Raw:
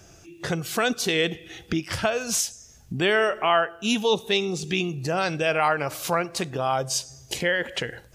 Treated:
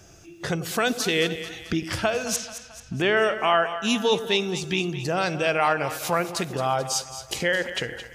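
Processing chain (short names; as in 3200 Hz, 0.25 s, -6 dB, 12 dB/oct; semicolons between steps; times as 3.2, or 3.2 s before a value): 2.36–3.17 LPF 3500 Hz 12 dB/oct; split-band echo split 700 Hz, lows 0.1 s, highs 0.219 s, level -12 dB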